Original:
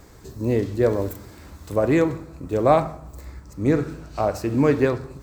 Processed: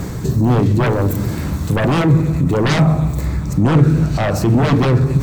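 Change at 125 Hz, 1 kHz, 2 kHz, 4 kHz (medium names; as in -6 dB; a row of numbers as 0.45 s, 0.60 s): +15.0 dB, +4.0 dB, +8.5 dB, +14.5 dB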